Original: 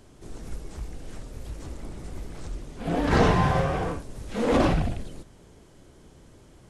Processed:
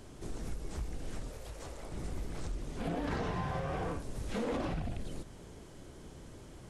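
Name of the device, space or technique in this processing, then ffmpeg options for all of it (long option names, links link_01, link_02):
serial compression, peaks first: -filter_complex "[0:a]acompressor=threshold=-28dB:ratio=6,acompressor=threshold=-38dB:ratio=2,asettb=1/sr,asplit=3[link_01][link_02][link_03];[link_01]atrim=end=1.304[link_04];[link_02]atrim=start=1.3:end=1.92,asetpts=PTS-STARTPTS,afade=type=in:duration=0.004:curve=qsin,afade=type=out:start_time=0.616:duration=0.004:curve=qsin,lowshelf=frequency=380:width_type=q:width=1.5:gain=-7.5[link_05];[link_03]atrim=start=1.916[link_06];[link_04][link_05]acrossfade=duration=0.004:curve1=hsin:curve2=qsin[link_07];[link_07][link_06]acrossfade=duration=0.004:curve1=qsin:curve2=hsin,volume=1.5dB"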